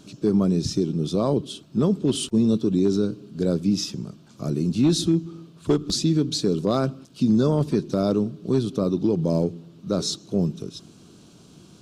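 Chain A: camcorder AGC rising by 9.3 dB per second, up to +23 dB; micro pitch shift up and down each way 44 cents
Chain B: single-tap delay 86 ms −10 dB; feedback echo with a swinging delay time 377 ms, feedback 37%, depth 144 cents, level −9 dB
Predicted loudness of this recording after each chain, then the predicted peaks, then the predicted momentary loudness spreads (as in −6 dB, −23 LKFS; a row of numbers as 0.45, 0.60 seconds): −27.0, −22.5 LKFS; −10.5, −8.5 dBFS; 13, 9 LU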